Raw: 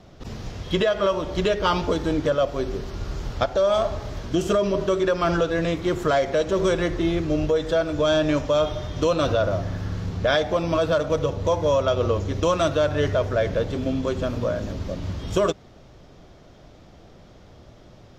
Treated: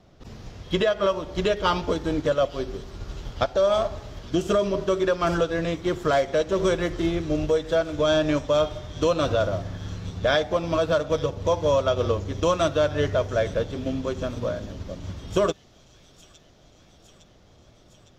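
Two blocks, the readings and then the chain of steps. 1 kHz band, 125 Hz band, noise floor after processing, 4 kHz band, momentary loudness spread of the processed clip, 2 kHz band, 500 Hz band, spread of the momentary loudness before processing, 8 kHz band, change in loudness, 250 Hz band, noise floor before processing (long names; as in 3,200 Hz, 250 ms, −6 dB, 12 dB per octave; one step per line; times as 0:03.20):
−1.0 dB, −3.0 dB, −55 dBFS, −1.0 dB, 12 LU, −1.5 dB, −1.0 dB, 9 LU, −1.0 dB, −1.0 dB, −2.0 dB, −49 dBFS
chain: delay with a high-pass on its return 859 ms, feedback 69%, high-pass 3,900 Hz, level −8 dB
expander for the loud parts 1.5 to 1, over −31 dBFS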